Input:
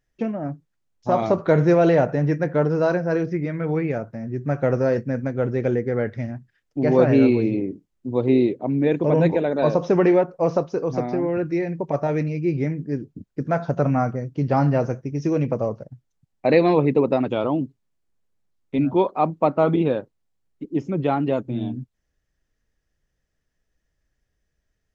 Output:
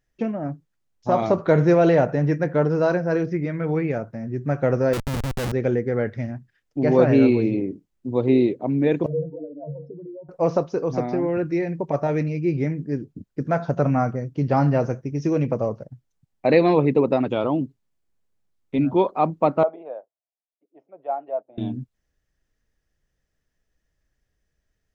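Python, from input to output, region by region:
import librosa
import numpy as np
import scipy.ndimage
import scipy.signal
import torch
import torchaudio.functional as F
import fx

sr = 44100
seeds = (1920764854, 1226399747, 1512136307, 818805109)

y = fx.chain(x, sr, fx.air_absorb(metres=260.0),
    fx.schmitt(flips_db=-27.0), at=(4.93, 5.52))
y = fx.chain(y, sr, fx.spec_expand(power=3.1),
    fx.stiff_resonator(f0_hz=140.0, decay_s=0.32, stiffness=0.03), at=(9.06, 10.29))
y = fx.chain(y, sr, fx.ladder_bandpass(hz=710.0, resonance_pct=75),
    fx.band_widen(depth_pct=40), at=(19.63, 21.58))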